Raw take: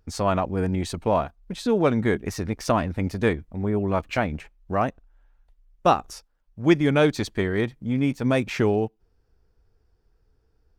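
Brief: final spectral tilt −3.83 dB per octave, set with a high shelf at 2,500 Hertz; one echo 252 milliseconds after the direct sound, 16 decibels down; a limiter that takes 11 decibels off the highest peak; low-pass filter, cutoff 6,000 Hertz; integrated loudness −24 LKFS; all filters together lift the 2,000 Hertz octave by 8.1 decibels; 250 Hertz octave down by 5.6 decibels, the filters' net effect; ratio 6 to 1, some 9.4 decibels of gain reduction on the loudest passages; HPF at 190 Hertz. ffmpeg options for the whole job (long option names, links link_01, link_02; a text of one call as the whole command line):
ffmpeg -i in.wav -af "highpass=190,lowpass=6000,equalizer=frequency=250:width_type=o:gain=-6,equalizer=frequency=2000:width_type=o:gain=7,highshelf=frequency=2500:gain=7,acompressor=threshold=-22dB:ratio=6,alimiter=limit=-18dB:level=0:latency=1,aecho=1:1:252:0.158,volume=7dB" out.wav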